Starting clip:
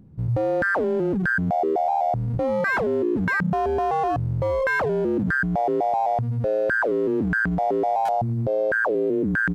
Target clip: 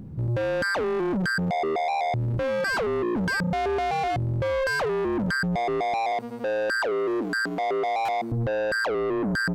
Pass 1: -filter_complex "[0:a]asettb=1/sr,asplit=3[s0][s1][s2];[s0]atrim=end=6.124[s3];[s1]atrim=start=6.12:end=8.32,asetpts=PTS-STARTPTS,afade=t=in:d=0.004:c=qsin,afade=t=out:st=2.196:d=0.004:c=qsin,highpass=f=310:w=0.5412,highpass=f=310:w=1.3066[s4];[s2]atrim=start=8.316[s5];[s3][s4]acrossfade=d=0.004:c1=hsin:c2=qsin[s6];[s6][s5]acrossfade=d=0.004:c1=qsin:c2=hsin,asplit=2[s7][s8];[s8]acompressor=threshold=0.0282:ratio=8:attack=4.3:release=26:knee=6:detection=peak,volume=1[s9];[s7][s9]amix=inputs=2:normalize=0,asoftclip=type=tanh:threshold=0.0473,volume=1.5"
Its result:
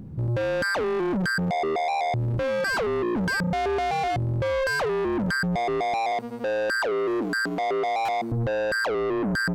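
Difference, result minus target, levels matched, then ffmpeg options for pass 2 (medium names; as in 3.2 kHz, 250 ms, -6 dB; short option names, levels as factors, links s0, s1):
compression: peak gain reduction -9 dB
-filter_complex "[0:a]asettb=1/sr,asplit=3[s0][s1][s2];[s0]atrim=end=6.124[s3];[s1]atrim=start=6.12:end=8.32,asetpts=PTS-STARTPTS,afade=t=in:d=0.004:c=qsin,afade=t=out:st=2.196:d=0.004:c=qsin,highpass=f=310:w=0.5412,highpass=f=310:w=1.3066[s4];[s2]atrim=start=8.316[s5];[s3][s4]acrossfade=d=0.004:c1=hsin:c2=qsin[s6];[s6][s5]acrossfade=d=0.004:c1=qsin:c2=hsin,asplit=2[s7][s8];[s8]acompressor=threshold=0.00891:ratio=8:attack=4.3:release=26:knee=6:detection=peak,volume=1[s9];[s7][s9]amix=inputs=2:normalize=0,asoftclip=type=tanh:threshold=0.0473,volume=1.5"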